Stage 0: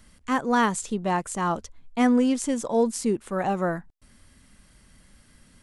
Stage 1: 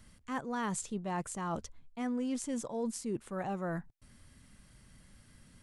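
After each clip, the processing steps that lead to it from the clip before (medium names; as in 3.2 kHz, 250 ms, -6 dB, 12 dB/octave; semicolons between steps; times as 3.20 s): peaking EQ 120 Hz +6.5 dB 1 oct; reverse; compression 6:1, threshold -28 dBFS, peak gain reduction 12 dB; reverse; trim -5 dB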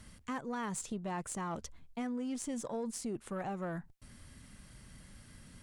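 Chebyshev shaper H 6 -28 dB, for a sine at -23 dBFS; compression, threshold -40 dBFS, peak gain reduction 9.5 dB; trim +4.5 dB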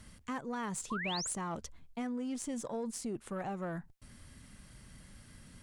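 painted sound rise, 0.90–1.34 s, 970–11000 Hz -39 dBFS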